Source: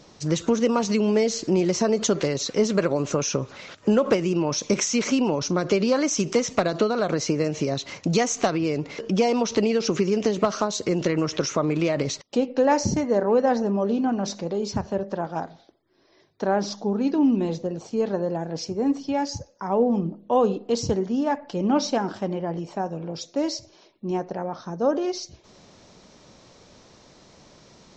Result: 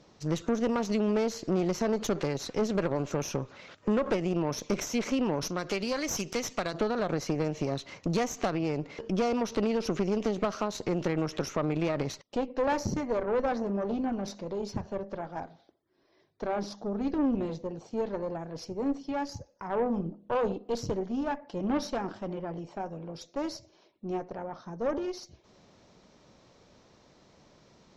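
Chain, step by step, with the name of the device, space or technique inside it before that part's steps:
0:05.42–0:06.74: tilt shelving filter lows −6 dB, about 1,300 Hz
tube preamp driven hard (tube saturation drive 19 dB, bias 0.75; high-shelf EQ 5,200 Hz −8.5 dB)
level −2.5 dB

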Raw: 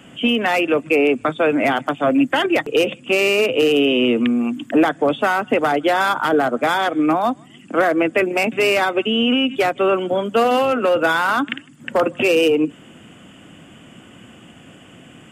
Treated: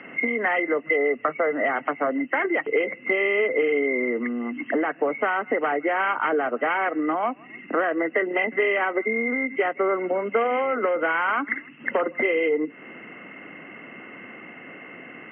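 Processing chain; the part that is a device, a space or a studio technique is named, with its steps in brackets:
0:00.83–0:01.73: comb filter 1.6 ms, depth 31%
hearing aid with frequency lowering (hearing-aid frequency compression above 1,900 Hz 4 to 1; downward compressor 4 to 1, threshold −25 dBFS, peak gain reduction 12 dB; loudspeaker in its box 280–5,400 Hz, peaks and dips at 430 Hz +4 dB, 1,200 Hz +3 dB, 1,800 Hz +4 dB, 5,000 Hz +6 dB)
level +2 dB

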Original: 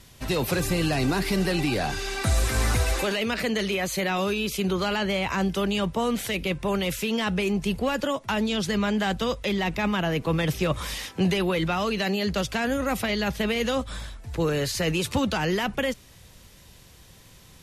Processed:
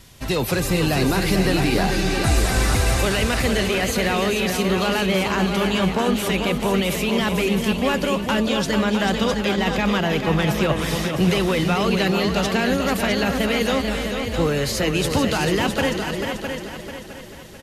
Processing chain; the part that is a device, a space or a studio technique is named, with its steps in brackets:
echo with shifted repeats 298 ms, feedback 37%, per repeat +57 Hz, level −14.5 dB
multi-head tape echo (echo machine with several playback heads 220 ms, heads second and third, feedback 44%, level −7 dB; tape wow and flutter 23 cents)
level +3.5 dB

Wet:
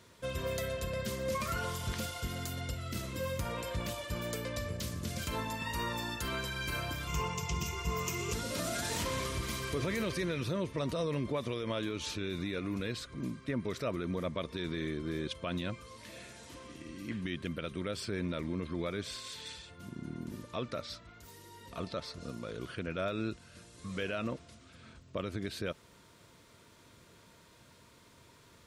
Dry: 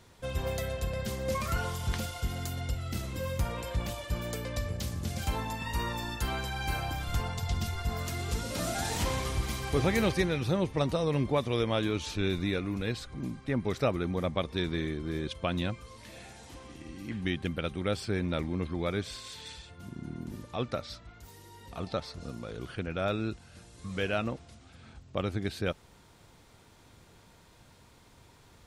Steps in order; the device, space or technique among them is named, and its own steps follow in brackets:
PA system with an anti-feedback notch (high-pass filter 130 Hz 6 dB per octave; Butterworth band-reject 790 Hz, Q 4.7; brickwall limiter −25.5 dBFS, peak gain reduction 10 dB)
0:07.07–0:08.33: EQ curve with evenly spaced ripples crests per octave 0.75, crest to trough 13 dB

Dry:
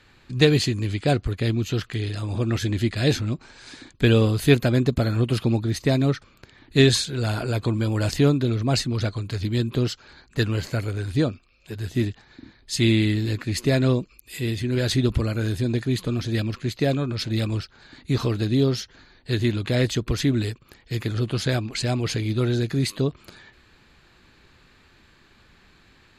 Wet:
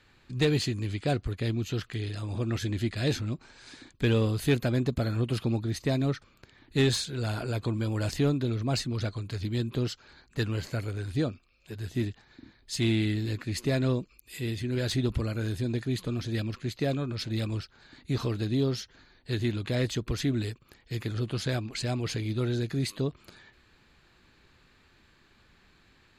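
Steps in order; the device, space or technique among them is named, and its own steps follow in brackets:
saturation between pre-emphasis and de-emphasis (high-shelf EQ 3,100 Hz +9 dB; soft clipping −9 dBFS, distortion −20 dB; high-shelf EQ 3,100 Hz −9 dB)
level −6 dB

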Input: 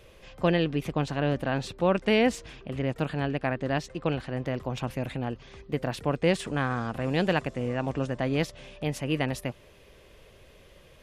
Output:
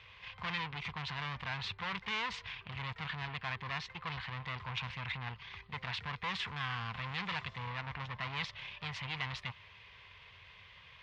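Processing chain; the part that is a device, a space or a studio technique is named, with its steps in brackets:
0:07.70–0:08.21: high-shelf EQ 4,700 Hz −11 dB
scooped metal amplifier (tube saturation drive 34 dB, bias 0.6; loudspeaker in its box 93–3,900 Hz, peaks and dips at 97 Hz +8 dB, 190 Hz +4 dB, 580 Hz −9 dB, 1,000 Hz +9 dB, 2,100 Hz +5 dB; guitar amp tone stack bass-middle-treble 10-0-10)
level +9 dB

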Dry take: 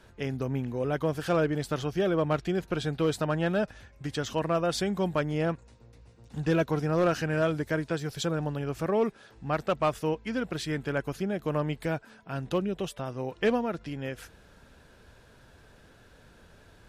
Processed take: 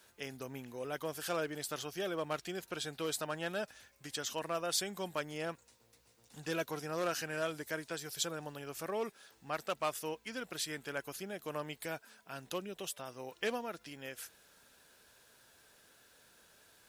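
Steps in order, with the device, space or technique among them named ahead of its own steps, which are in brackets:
turntable without a phono preamp (RIAA equalisation recording; white noise bed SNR 35 dB)
level −8 dB

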